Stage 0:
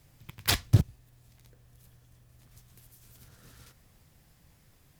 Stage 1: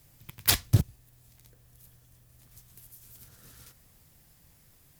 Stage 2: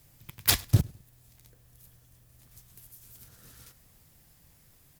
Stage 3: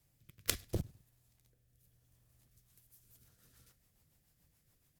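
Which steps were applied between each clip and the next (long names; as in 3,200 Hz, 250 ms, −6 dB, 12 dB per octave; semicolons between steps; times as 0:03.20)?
high-shelf EQ 7,100 Hz +10 dB; level −1 dB
repeating echo 103 ms, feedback 35%, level −24 dB
harmonic generator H 3 −8 dB, 4 −12 dB, 6 −15 dB, 8 −33 dB, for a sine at −1 dBFS; rotating-speaker cabinet horn 0.75 Hz, later 7 Hz, at 0:02.26; level +3.5 dB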